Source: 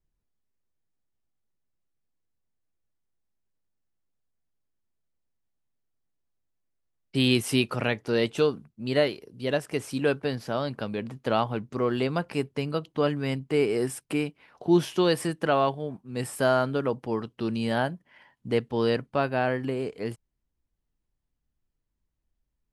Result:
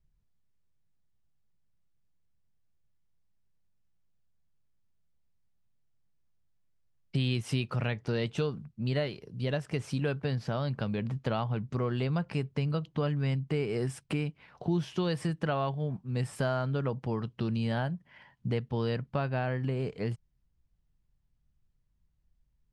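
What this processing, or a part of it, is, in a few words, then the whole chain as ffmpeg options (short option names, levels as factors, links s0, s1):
jukebox: -af "lowpass=6600,lowshelf=f=210:t=q:w=1.5:g=7.5,acompressor=threshold=0.0355:ratio=3"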